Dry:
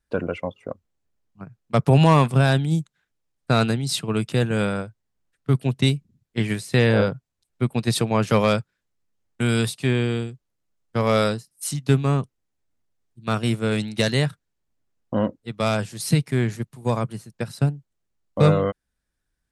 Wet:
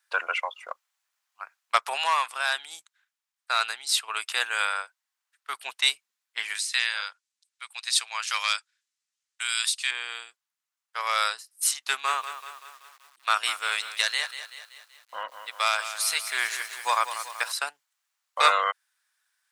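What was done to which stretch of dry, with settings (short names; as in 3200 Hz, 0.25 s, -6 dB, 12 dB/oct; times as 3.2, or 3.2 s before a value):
6.55–9.91 weighting filter ITU-R 468
11.8–17.52 lo-fi delay 0.191 s, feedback 55%, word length 8-bit, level -11 dB
whole clip: HPF 1000 Hz 24 dB/oct; vocal rider 0.5 s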